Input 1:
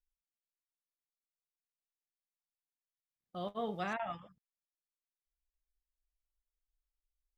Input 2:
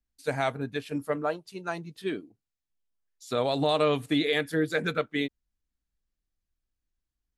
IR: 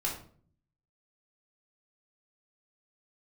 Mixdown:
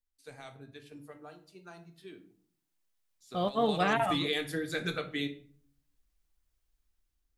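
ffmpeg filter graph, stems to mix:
-filter_complex "[0:a]dynaudnorm=f=350:g=5:m=11dB,volume=-1.5dB[a];[1:a]acrossover=split=130|3000[b][c][d];[c]acompressor=threshold=-37dB:ratio=2.5[e];[b][e][d]amix=inputs=3:normalize=0,volume=-3.5dB,afade=t=in:st=3.51:d=0.63:silence=0.223872,asplit=2[f][g];[g]volume=-5.5dB[h];[2:a]atrim=start_sample=2205[i];[h][i]afir=irnorm=-1:irlink=0[j];[a][f][j]amix=inputs=3:normalize=0"

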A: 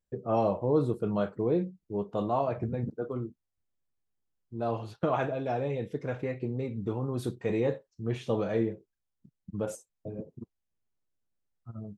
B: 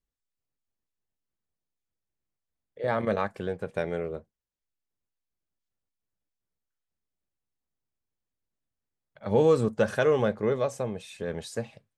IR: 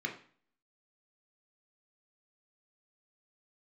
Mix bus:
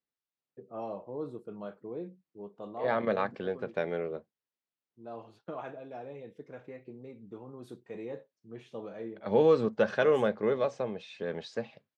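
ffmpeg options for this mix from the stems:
-filter_complex "[0:a]highshelf=f=5.7k:g=-6,adelay=450,volume=-11.5dB[a];[1:a]lowpass=f=4.9k:w=0.5412,lowpass=f=4.9k:w=1.3066,volume=-1.5dB[b];[a][b]amix=inputs=2:normalize=0,highpass=190"

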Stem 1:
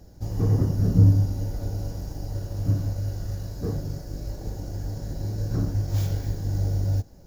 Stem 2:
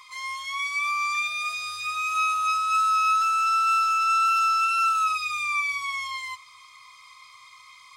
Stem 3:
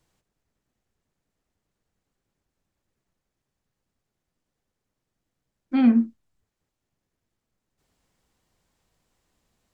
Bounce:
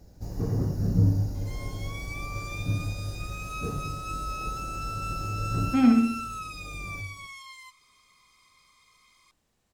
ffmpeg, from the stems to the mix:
-filter_complex "[0:a]bandreject=f=3.2k:w=5.9,bandreject=f=97.74:t=h:w=4,bandreject=f=195.48:t=h:w=4,bandreject=f=293.22:t=h:w=4,bandreject=f=390.96:t=h:w=4,bandreject=f=488.7:t=h:w=4,bandreject=f=586.44:t=h:w=4,bandreject=f=684.18:t=h:w=4,bandreject=f=781.92:t=h:w=4,bandreject=f=879.66:t=h:w=4,bandreject=f=977.4:t=h:w=4,bandreject=f=1.07514k:t=h:w=4,bandreject=f=1.17288k:t=h:w=4,bandreject=f=1.27062k:t=h:w=4,bandreject=f=1.36836k:t=h:w=4,bandreject=f=1.4661k:t=h:w=4,bandreject=f=1.56384k:t=h:w=4,bandreject=f=1.66158k:t=h:w=4,bandreject=f=1.75932k:t=h:w=4,bandreject=f=1.85706k:t=h:w=4,bandreject=f=1.9548k:t=h:w=4,bandreject=f=2.05254k:t=h:w=4,bandreject=f=2.15028k:t=h:w=4,bandreject=f=2.24802k:t=h:w=4,bandreject=f=2.34576k:t=h:w=4,bandreject=f=2.4435k:t=h:w=4,bandreject=f=2.54124k:t=h:w=4,bandreject=f=2.63898k:t=h:w=4,bandreject=f=2.73672k:t=h:w=4,bandreject=f=2.83446k:t=h:w=4,bandreject=f=2.9322k:t=h:w=4,bandreject=f=3.02994k:t=h:w=4,bandreject=f=3.12768k:t=h:w=4,bandreject=f=3.22542k:t=h:w=4,bandreject=f=3.32316k:t=h:w=4,bandreject=f=3.4209k:t=h:w=4,bandreject=f=3.51864k:t=h:w=4,flanger=delay=3.9:depth=4.2:regen=-82:speed=0.25:shape=triangular,volume=1dB,asplit=2[a][b];[b]volume=-16dB[c];[1:a]aemphasis=mode=production:type=cd,adelay=1350,volume=-14.5dB[d];[2:a]volume=-2.5dB,asplit=3[e][f][g];[f]volume=-5dB[h];[g]apad=whole_len=320373[i];[a][i]sidechaincompress=threshold=-33dB:ratio=8:attack=16:release=1320[j];[c][h]amix=inputs=2:normalize=0,aecho=0:1:65|130|195|260|325|390:1|0.44|0.194|0.0852|0.0375|0.0165[k];[j][d][e][k]amix=inputs=4:normalize=0"

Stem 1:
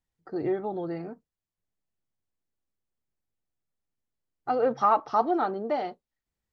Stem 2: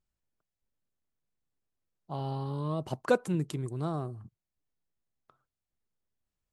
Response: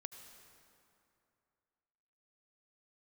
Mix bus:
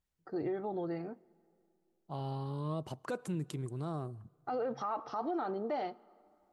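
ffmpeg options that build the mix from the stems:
-filter_complex "[0:a]volume=-5dB,asplit=2[a][b];[b]volume=-15dB[c];[1:a]volume=-4.5dB,asplit=2[d][e];[e]volume=-18dB[f];[2:a]atrim=start_sample=2205[g];[c][f]amix=inputs=2:normalize=0[h];[h][g]afir=irnorm=-1:irlink=0[i];[a][d][i]amix=inputs=3:normalize=0,alimiter=level_in=4dB:limit=-24dB:level=0:latency=1:release=50,volume=-4dB"

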